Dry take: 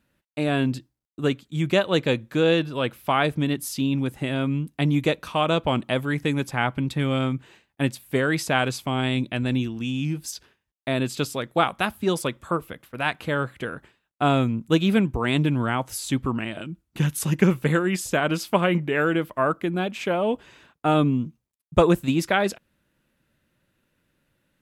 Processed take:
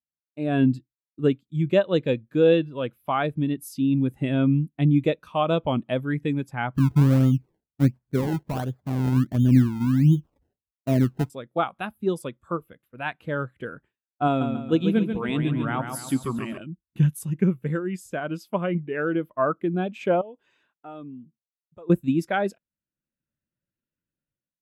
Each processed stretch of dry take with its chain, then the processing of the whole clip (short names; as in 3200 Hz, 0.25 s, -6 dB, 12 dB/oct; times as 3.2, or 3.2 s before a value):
6.75–11.3 LPF 3000 Hz 24 dB/oct + low shelf 280 Hz +8 dB + decimation with a swept rate 26× 1.4 Hz
14.27–16.58 low shelf 130 Hz -9 dB + feedback echo 0.139 s, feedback 54%, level -5 dB
20.21–21.9 low shelf 180 Hz -11.5 dB + compressor 2:1, threshold -47 dBFS
whole clip: high shelf 11000 Hz +8 dB; AGC gain up to 11 dB; spectral expander 1.5:1; gain -7 dB